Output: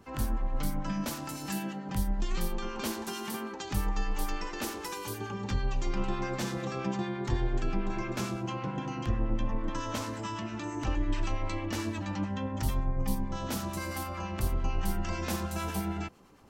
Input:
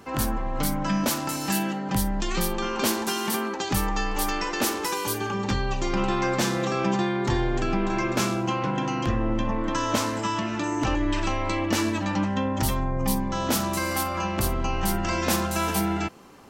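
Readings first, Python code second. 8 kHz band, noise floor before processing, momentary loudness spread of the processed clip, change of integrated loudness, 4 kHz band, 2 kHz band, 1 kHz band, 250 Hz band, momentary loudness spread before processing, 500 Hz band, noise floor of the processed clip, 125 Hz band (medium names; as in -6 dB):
-11.5 dB, -31 dBFS, 4 LU, -8.5 dB, -10.5 dB, -10.5 dB, -10.5 dB, -8.5 dB, 3 LU, -9.5 dB, -40 dBFS, -5.0 dB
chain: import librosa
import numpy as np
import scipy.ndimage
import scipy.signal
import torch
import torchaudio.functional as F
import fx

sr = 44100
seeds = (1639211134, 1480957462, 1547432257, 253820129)

y = fx.low_shelf(x, sr, hz=110.0, db=10.5)
y = fx.harmonic_tremolo(y, sr, hz=9.0, depth_pct=50, crossover_hz=1000.0)
y = F.gain(torch.from_numpy(y), -8.0).numpy()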